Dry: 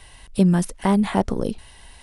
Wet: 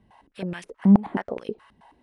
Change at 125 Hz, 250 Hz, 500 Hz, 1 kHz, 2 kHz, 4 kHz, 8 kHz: -4.5 dB, -1.5 dB, -7.0 dB, -8.0 dB, -5.0 dB, under -10 dB, under -15 dB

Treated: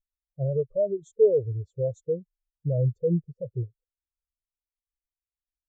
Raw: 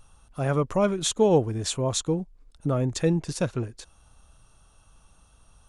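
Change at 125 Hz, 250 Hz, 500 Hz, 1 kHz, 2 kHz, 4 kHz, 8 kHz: -0.5 dB, -7.5 dB, +0.5 dB, under -20 dB, under -40 dB, under -35 dB, under -30 dB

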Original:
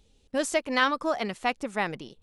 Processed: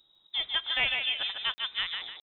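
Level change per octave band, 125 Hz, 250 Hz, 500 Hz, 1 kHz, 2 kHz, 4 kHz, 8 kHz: -12.0 dB, -26.5 dB, -20.0 dB, -13.5 dB, -1.5 dB, +9.0 dB, under -40 dB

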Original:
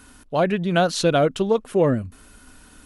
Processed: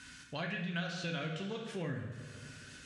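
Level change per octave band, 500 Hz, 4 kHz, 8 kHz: -23.5 dB, -13.0 dB, -18.0 dB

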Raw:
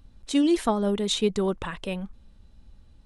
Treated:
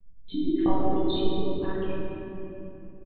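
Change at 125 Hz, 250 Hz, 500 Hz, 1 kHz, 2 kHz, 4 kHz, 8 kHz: -0.5 dB, -2.0 dB, -2.5 dB, -1.0 dB, -7.0 dB, -7.0 dB, under -40 dB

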